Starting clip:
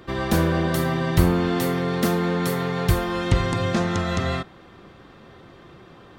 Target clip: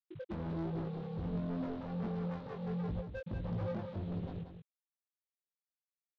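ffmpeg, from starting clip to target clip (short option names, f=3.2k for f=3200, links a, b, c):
-filter_complex "[0:a]bandreject=f=50:t=h:w=6,bandreject=f=100:t=h:w=6,bandreject=f=150:t=h:w=6,bandreject=f=200:t=h:w=6,bandreject=f=250:t=h:w=6,bandreject=f=300:t=h:w=6,bandreject=f=350:t=h:w=6,bandreject=f=400:t=h:w=6,bandreject=f=450:t=h:w=6,afftfilt=real='re*gte(hypot(re,im),0.0891)':imag='im*gte(hypot(re,im),0.0891)':win_size=1024:overlap=0.75,bandreject=f=1.1k:w=15,afftfilt=real='re*gte(hypot(re,im),0.316)':imag='im*gte(hypot(re,im),0.316)':win_size=1024:overlap=0.75,dynaudnorm=f=180:g=5:m=5dB,alimiter=limit=-13.5dB:level=0:latency=1:release=267,acompressor=threshold=-28dB:ratio=8,aresample=8000,acrusher=bits=4:mode=log:mix=0:aa=0.000001,aresample=44100,asoftclip=type=tanh:threshold=-37dB,flanger=delay=18:depth=2.2:speed=1.4,asplit=2[a][b];[b]aecho=0:1:185:0.398[c];[a][c]amix=inputs=2:normalize=0,volume=4dB"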